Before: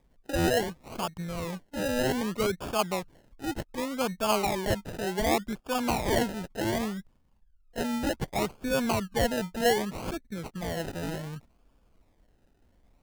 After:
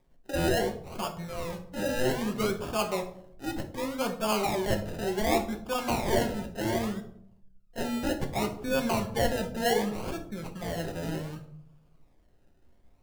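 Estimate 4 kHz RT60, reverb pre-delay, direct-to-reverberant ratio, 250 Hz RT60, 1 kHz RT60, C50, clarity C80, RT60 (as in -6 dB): 0.40 s, 5 ms, 3.0 dB, 0.85 s, 0.60 s, 11.0 dB, 14.5 dB, 0.70 s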